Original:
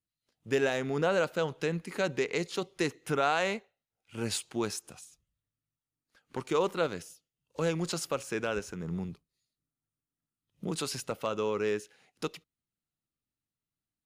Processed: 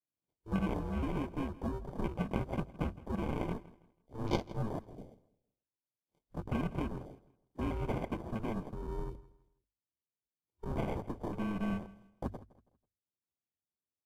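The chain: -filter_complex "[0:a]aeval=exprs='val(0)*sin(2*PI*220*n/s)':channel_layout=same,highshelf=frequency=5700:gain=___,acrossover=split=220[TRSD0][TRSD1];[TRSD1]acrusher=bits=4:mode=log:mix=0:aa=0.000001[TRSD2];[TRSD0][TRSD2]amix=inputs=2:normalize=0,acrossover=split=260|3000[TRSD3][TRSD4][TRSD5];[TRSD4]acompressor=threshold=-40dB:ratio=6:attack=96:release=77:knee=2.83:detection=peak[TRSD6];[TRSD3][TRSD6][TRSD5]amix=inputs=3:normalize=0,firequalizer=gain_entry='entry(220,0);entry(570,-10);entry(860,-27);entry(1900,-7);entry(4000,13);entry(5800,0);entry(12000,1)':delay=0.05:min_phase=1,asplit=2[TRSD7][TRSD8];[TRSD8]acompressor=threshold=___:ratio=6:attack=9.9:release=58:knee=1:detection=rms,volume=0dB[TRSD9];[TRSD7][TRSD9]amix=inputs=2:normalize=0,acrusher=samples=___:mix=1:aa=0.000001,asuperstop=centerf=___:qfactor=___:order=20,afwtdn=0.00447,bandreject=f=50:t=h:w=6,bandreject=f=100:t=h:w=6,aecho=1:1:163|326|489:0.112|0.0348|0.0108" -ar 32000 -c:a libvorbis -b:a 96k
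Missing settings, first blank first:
-4.5, -46dB, 33, 1800, 4.2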